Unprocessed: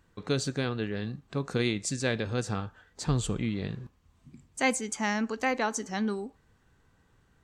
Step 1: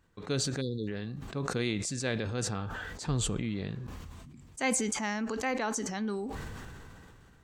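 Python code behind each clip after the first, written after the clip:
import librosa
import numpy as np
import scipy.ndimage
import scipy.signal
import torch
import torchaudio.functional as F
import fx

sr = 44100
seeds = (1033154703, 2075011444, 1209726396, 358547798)

y = fx.spec_erase(x, sr, start_s=0.61, length_s=0.27, low_hz=540.0, high_hz=3400.0)
y = fx.sustainer(y, sr, db_per_s=21.0)
y = y * librosa.db_to_amplitude(-4.5)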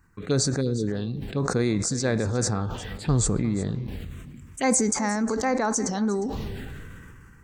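y = fx.env_phaser(x, sr, low_hz=570.0, high_hz=3000.0, full_db=-30.0)
y = y + 10.0 ** (-16.5 / 20.0) * np.pad(y, (int(356 * sr / 1000.0), 0))[:len(y)]
y = y * librosa.db_to_amplitude(8.5)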